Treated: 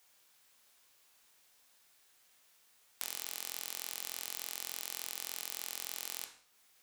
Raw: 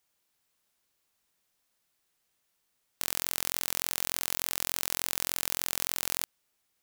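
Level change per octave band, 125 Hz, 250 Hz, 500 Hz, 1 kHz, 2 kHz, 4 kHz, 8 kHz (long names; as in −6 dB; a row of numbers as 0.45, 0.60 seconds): below −15 dB, −15.5 dB, −11.0 dB, −10.5 dB, −9.5 dB, −8.0 dB, −9.0 dB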